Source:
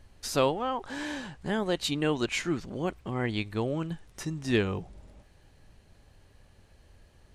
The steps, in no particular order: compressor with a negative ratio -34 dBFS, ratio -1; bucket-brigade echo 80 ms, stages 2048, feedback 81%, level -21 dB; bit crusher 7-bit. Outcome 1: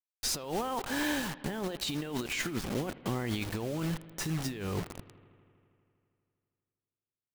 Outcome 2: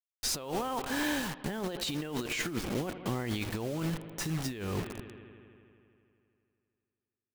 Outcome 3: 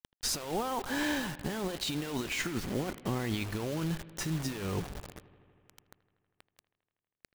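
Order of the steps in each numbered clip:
bit crusher > compressor with a negative ratio > bucket-brigade echo; bit crusher > bucket-brigade echo > compressor with a negative ratio; compressor with a negative ratio > bit crusher > bucket-brigade echo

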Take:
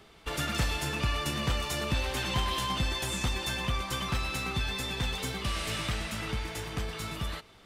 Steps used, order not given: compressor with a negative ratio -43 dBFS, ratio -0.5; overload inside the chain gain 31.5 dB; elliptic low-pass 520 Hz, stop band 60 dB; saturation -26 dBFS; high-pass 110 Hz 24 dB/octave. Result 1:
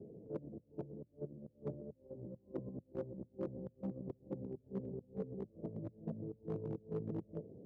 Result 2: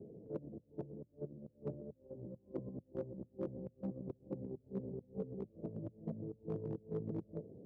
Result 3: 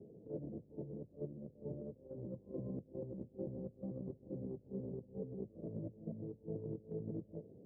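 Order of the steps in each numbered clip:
elliptic low-pass > compressor with a negative ratio > overload inside the chain > saturation > high-pass; elliptic low-pass > compressor with a negative ratio > saturation > overload inside the chain > high-pass; overload inside the chain > saturation > elliptic low-pass > compressor with a negative ratio > high-pass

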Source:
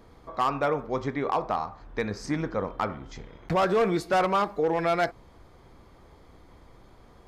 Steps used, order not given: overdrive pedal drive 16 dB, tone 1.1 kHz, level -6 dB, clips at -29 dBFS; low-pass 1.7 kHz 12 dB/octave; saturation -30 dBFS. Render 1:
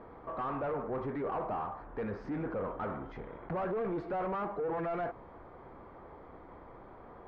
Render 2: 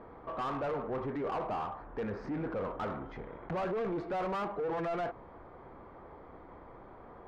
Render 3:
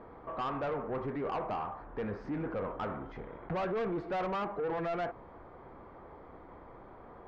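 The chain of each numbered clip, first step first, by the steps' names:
saturation > overdrive pedal > low-pass; low-pass > saturation > overdrive pedal; overdrive pedal > low-pass > saturation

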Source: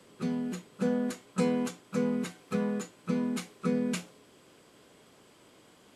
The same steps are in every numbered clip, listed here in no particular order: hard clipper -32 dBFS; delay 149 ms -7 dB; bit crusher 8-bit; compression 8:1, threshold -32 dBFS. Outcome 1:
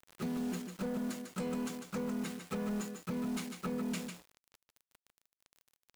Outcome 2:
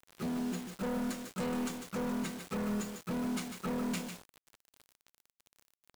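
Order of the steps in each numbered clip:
bit crusher > compression > delay > hard clipper; hard clipper > compression > delay > bit crusher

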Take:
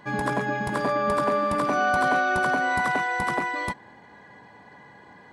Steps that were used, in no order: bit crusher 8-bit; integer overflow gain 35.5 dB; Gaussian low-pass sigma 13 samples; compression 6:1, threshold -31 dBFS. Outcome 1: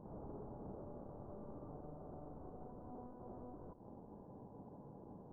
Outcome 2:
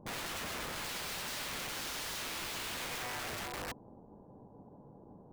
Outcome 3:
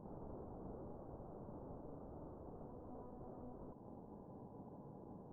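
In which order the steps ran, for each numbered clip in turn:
compression > bit crusher > integer overflow > Gaussian low-pass; bit crusher > Gaussian low-pass > integer overflow > compression; bit crusher > compression > integer overflow > Gaussian low-pass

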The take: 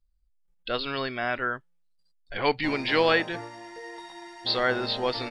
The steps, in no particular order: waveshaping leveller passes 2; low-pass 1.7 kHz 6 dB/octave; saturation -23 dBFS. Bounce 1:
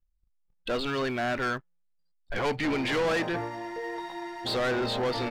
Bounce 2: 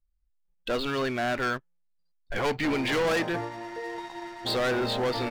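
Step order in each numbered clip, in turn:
saturation > low-pass > waveshaping leveller; low-pass > waveshaping leveller > saturation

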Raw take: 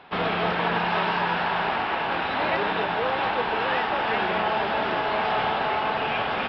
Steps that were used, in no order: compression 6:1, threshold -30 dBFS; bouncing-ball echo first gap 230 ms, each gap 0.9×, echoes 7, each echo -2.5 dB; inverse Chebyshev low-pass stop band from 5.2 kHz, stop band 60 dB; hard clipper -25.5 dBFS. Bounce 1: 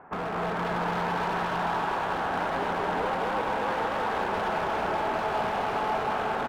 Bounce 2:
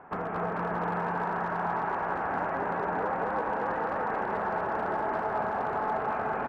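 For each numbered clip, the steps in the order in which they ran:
inverse Chebyshev low-pass > hard clipper > compression > bouncing-ball echo; compression > inverse Chebyshev low-pass > hard clipper > bouncing-ball echo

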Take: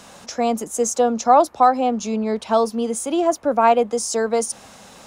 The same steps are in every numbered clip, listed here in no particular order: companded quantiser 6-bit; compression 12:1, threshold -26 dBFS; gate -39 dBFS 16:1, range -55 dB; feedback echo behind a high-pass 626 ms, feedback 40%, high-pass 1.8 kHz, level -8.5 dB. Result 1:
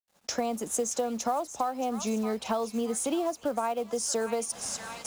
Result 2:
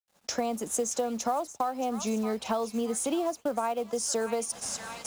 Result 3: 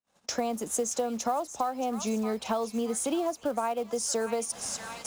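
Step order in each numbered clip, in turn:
feedback echo behind a high-pass > gate > compression > companded quantiser; feedback echo behind a high-pass > compression > gate > companded quantiser; feedback echo behind a high-pass > companded quantiser > gate > compression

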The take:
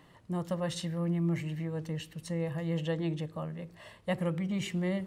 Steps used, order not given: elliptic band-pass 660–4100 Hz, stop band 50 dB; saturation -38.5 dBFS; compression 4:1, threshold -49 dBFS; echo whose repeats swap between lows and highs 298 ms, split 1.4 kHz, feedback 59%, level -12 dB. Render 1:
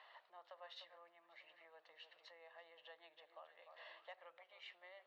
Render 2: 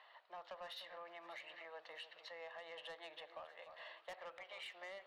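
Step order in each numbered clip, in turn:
echo whose repeats swap between lows and highs > compression > elliptic band-pass > saturation; elliptic band-pass > saturation > echo whose repeats swap between lows and highs > compression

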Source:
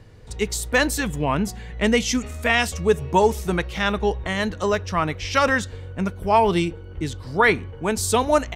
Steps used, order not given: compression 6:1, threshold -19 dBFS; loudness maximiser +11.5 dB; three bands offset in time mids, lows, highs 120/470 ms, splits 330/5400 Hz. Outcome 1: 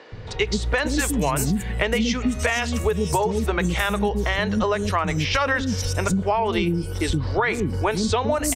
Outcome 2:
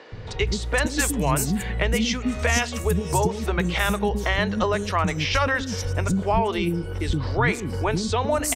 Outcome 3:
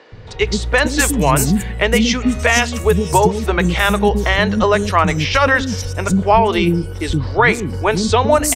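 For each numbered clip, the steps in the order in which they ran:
three bands offset in time > loudness maximiser > compression; loudness maximiser > compression > three bands offset in time; compression > three bands offset in time > loudness maximiser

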